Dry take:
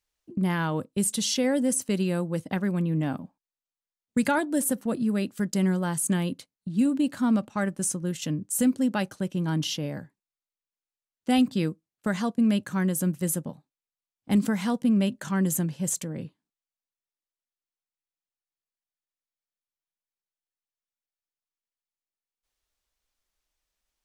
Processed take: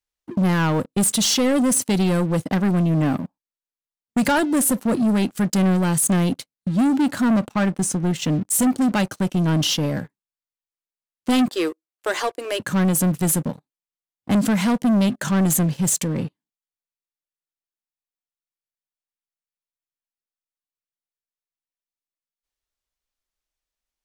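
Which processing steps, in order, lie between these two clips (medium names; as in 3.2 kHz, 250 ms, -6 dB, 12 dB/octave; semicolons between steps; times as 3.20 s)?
7.52–8.41 s: treble shelf 6.1 kHz -11.5 dB; 11.48–12.60 s: elliptic high-pass 340 Hz, stop band 40 dB; waveshaping leveller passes 3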